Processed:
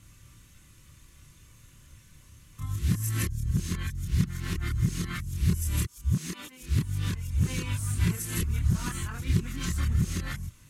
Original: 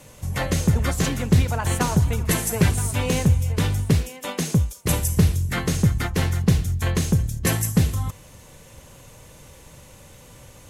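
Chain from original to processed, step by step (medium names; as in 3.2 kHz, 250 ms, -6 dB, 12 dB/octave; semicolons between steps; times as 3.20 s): reverse the whole clip; chorus voices 6, 0.28 Hz, delay 28 ms, depth 1.6 ms; high-order bell 620 Hz -14.5 dB 1.3 oct; trim -6 dB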